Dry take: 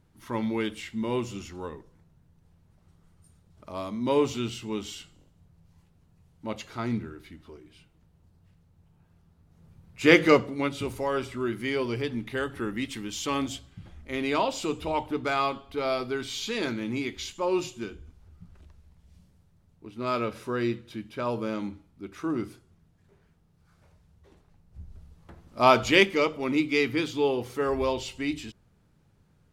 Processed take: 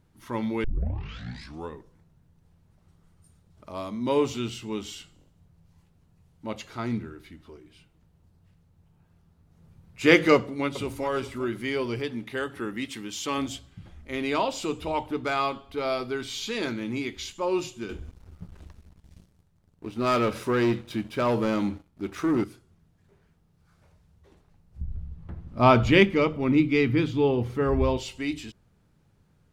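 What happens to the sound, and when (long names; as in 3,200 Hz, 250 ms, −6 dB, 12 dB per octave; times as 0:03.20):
0:00.64: tape start 1.06 s
0:10.35–0:11.04: delay throw 400 ms, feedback 30%, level −12.5 dB
0:11.99–0:13.38: high-pass filter 150 Hz 6 dB per octave
0:17.89–0:22.44: leveller curve on the samples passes 2
0:24.81–0:27.97: bass and treble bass +13 dB, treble −10 dB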